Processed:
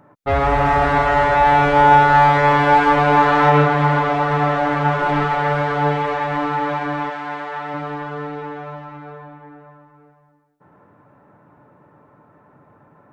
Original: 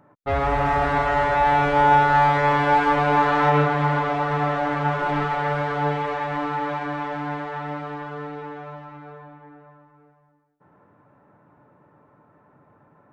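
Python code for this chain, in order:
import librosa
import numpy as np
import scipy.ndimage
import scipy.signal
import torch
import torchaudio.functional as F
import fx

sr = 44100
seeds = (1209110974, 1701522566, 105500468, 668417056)

y = fx.highpass(x, sr, hz=fx.line((7.09, 940.0), (7.73, 430.0)), slope=6, at=(7.09, 7.73), fade=0.02)
y = F.gain(torch.from_numpy(y), 5.0).numpy()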